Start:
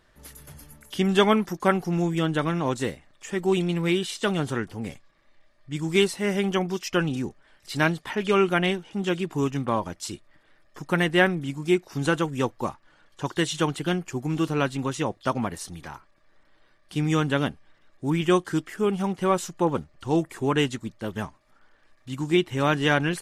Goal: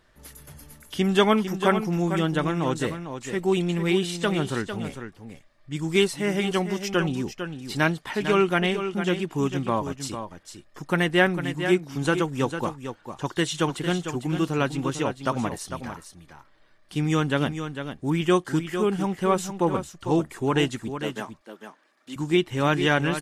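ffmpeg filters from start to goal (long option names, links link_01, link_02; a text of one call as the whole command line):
ffmpeg -i in.wav -filter_complex "[0:a]asettb=1/sr,asplit=3[link_01][link_02][link_03];[link_01]atrim=end=20.964[link_04];[link_02]atrim=start=20.96:end=22.16,asetpts=PTS-STARTPTS,afade=type=in:duration=0.004:curve=qsin,afade=type=out:start_time=1.196:duration=0.004:curve=qsin,highpass=frequency=240:width=0.5412,highpass=frequency=240:width=1.3066[link_05];[link_03]atrim=start=22.156[link_06];[link_04][link_05]acrossfade=duration=0.004:curve1=hsin:curve2=qsin[link_07];[link_07][link_06]acrossfade=duration=0.004:curve1=qsin:curve2=hsin,asplit=2[link_08][link_09];[link_09]aecho=0:1:451:0.355[link_10];[link_08][link_10]amix=inputs=2:normalize=0" out.wav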